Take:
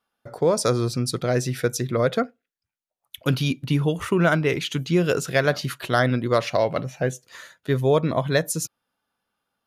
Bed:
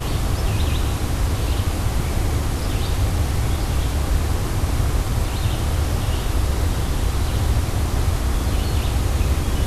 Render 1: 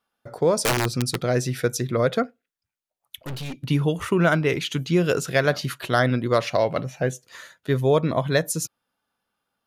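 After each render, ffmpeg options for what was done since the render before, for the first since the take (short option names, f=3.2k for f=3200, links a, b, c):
-filter_complex "[0:a]asettb=1/sr,asplit=3[a][b][c];[a]atrim=end=0.624[d];[b]atrim=start=0.62:end=1.25,asetpts=PTS-STARTPTS,afade=t=in:d=0.004:c=qsin,afade=t=out:st=0.626:d=0.004:c=qsin,aeval=exprs='(mod(5.31*val(0)+1,2)-1)/5.31':c=same[e];[c]atrim=start=1.246[f];[d][e]acrossfade=d=0.004:c1=hsin:c2=qsin[g];[g][f]acrossfade=d=0.004:c1=qsin:c2=hsin,asettb=1/sr,asplit=3[h][i][j];[h]atrim=end=3.174[k];[i]atrim=start=3.17:end=3.63,asetpts=PTS-STARTPTS,afade=t=in:d=0.004:c=qsin,afade=t=out:st=0.456:d=0.004:c=qsin,aeval=exprs='(tanh(31.6*val(0)+0.55)-tanh(0.55))/31.6':c=same[l];[j]atrim=start=3.626[m];[k][l]acrossfade=d=0.004:c1=hsin:c2=qsin[n];[n][m]acrossfade=d=0.004:c1=qsin:c2=hsin"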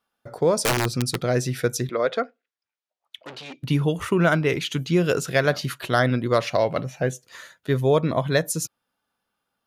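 -filter_complex "[0:a]asettb=1/sr,asplit=3[a][b][c];[a]atrim=end=1.894[d];[b]atrim=start=1.89:end=3.63,asetpts=PTS-STARTPTS,afade=t=in:d=0.004:c=qsin,afade=t=out:st=1.736:d=0.004:c=qsin,highpass=370,lowpass=5.1k[e];[c]atrim=start=3.626[f];[d][e]acrossfade=d=0.004:c1=hsin:c2=qsin[g];[g][f]acrossfade=d=0.004:c1=qsin:c2=hsin"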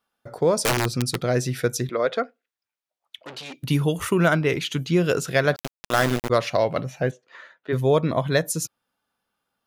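-filter_complex "[0:a]asettb=1/sr,asplit=3[a][b][c];[a]atrim=end=3.364[d];[b]atrim=start=3.36:end=4.28,asetpts=PTS-STARTPTS,afade=t=in:d=0.004:c=qsin,afade=t=out:st=0.916:d=0.004:c=qsin,highshelf=f=6.8k:g=11.5[e];[c]atrim=start=4.276[f];[d][e]acrossfade=d=0.004:c1=hsin:c2=qsin[g];[g][f]acrossfade=d=0.004:c1=qsin:c2=hsin,asettb=1/sr,asplit=3[h][i][j];[h]atrim=end=5.564[k];[i]atrim=start=5.56:end=6.3,asetpts=PTS-STARTPTS,afade=t=in:d=0.004:c=qsin,afade=t=out:st=0.736:d=0.004:c=qsin,aeval=exprs='val(0)*gte(abs(val(0)),0.1)':c=same[l];[j]atrim=start=6.296[m];[k][l]acrossfade=d=0.004:c1=hsin:c2=qsin[n];[n][m]acrossfade=d=0.004:c1=qsin:c2=hsin,asplit=3[o][p][q];[o]afade=t=out:st=7.1:d=0.02[r];[p]highpass=320,lowpass=2.4k,afade=t=in:st=7.1:d=0.02,afade=t=out:st=7.72:d=0.02[s];[q]afade=t=in:st=7.72:d=0.02[t];[r][s][t]amix=inputs=3:normalize=0"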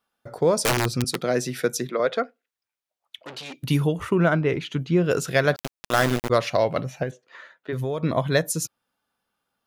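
-filter_complex "[0:a]asettb=1/sr,asplit=3[a][b][c];[a]atrim=end=1.044[d];[b]atrim=start=1.04:end=2,asetpts=PTS-STARTPTS,afade=t=in:d=0.004:c=qsin,afade=t=out:st=0.956:d=0.004:c=qsin,highpass=f=160:w=0.5412,highpass=f=160:w=1.3066[e];[c]atrim=start=1.996[f];[d][e]acrossfade=d=0.004:c1=hsin:c2=qsin[g];[g][f]acrossfade=d=0.004:c1=qsin:c2=hsin,asplit=3[h][i][j];[h]afade=t=out:st=3.86:d=0.02[k];[i]lowpass=f=1.6k:p=1,afade=t=in:st=3.86:d=0.02,afade=t=out:st=5.1:d=0.02[l];[j]afade=t=in:st=5.1:d=0.02[m];[k][l][m]amix=inputs=3:normalize=0,asettb=1/sr,asplit=3[n][o][p];[n]atrim=end=7.034[q];[o]atrim=start=7.03:end=8.03,asetpts=PTS-STARTPTS,afade=t=in:d=0.004:c=qsin,afade=t=out:st=0.996:d=0.004:c=qsin,acompressor=threshold=-24dB:ratio=5:attack=3.2:release=140:knee=1:detection=peak[r];[p]atrim=start=8.026[s];[q][r]acrossfade=d=0.004:c1=hsin:c2=qsin[t];[t][s]acrossfade=d=0.004:c1=qsin:c2=hsin"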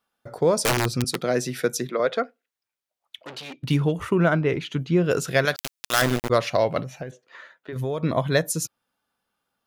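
-filter_complex "[0:a]asettb=1/sr,asplit=3[a][b][c];[a]atrim=end=3.404[d];[b]atrim=start=3.4:end=3.92,asetpts=PTS-STARTPTS,afade=t=in:d=0.004:c=qsin,afade=t=out:st=0.516:d=0.004:c=qsin,adynamicsmooth=sensitivity=7.5:basefreq=3.8k[e];[c]atrim=start=3.916[f];[d][e]acrossfade=d=0.004:c1=hsin:c2=qsin[g];[g][f]acrossfade=d=0.004:c1=qsin:c2=hsin,asettb=1/sr,asplit=3[h][i][j];[h]atrim=end=5.454[k];[i]atrim=start=5.45:end=6.02,asetpts=PTS-STARTPTS,afade=t=in:d=0.004:c=qsin,afade=t=out:st=0.566:d=0.004:c=qsin,tiltshelf=f=1.4k:g=-7.5[l];[j]atrim=start=6.016[m];[k][l]acrossfade=d=0.004:c1=hsin:c2=qsin[n];[n][m]acrossfade=d=0.004:c1=qsin:c2=hsin,asettb=1/sr,asplit=3[o][p][q];[o]atrim=end=6.834[r];[p]atrim=start=6.83:end=7.76,asetpts=PTS-STARTPTS,afade=t=in:d=0.004:c=qsin,afade=t=out:st=0.926:d=0.004:c=qsin,acompressor=threshold=-34dB:ratio=2:attack=3.2:release=140:knee=1:detection=peak[s];[q]atrim=start=7.756[t];[r][s]acrossfade=d=0.004:c1=hsin:c2=qsin[u];[u][t]acrossfade=d=0.004:c1=qsin:c2=hsin"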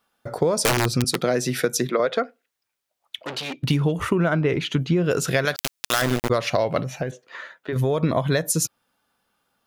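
-filter_complex "[0:a]asplit=2[a][b];[b]alimiter=limit=-14.5dB:level=0:latency=1:release=175,volume=2dB[c];[a][c]amix=inputs=2:normalize=0,acompressor=threshold=-17dB:ratio=6"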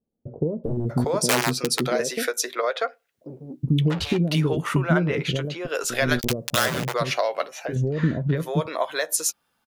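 -filter_complex "[0:a]asplit=2[a][b];[b]adelay=13,volume=-12dB[c];[a][c]amix=inputs=2:normalize=0,acrossover=split=450[d][e];[e]adelay=640[f];[d][f]amix=inputs=2:normalize=0"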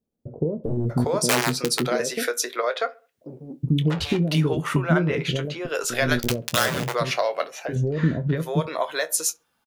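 -filter_complex "[0:a]asplit=2[a][b];[b]adelay=25,volume=-13.5dB[c];[a][c]amix=inputs=2:normalize=0,asplit=2[d][e];[e]adelay=67,lowpass=f=2k:p=1,volume=-23dB,asplit=2[f][g];[g]adelay=67,lowpass=f=2k:p=1,volume=0.41,asplit=2[h][i];[i]adelay=67,lowpass=f=2k:p=1,volume=0.41[j];[d][f][h][j]amix=inputs=4:normalize=0"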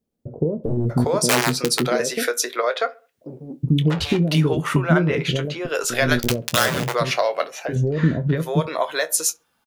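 -af "volume=3dB,alimiter=limit=-2dB:level=0:latency=1"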